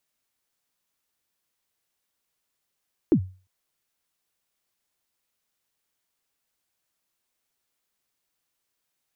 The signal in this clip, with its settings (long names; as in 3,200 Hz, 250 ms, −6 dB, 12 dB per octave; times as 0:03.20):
synth kick length 0.35 s, from 380 Hz, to 93 Hz, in 79 ms, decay 0.35 s, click off, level −11 dB